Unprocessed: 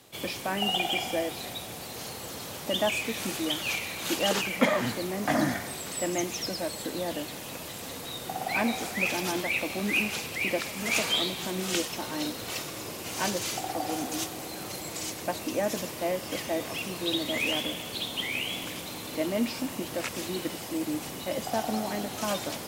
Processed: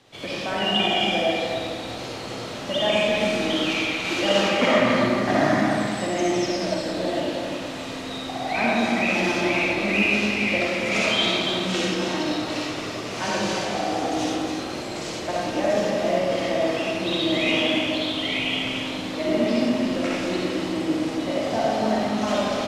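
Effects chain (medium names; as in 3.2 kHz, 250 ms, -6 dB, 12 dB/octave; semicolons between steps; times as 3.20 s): low-pass 5.1 kHz 12 dB/octave; delay 280 ms -6.5 dB; algorithmic reverb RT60 1.6 s, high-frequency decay 0.6×, pre-delay 20 ms, DRR -5.5 dB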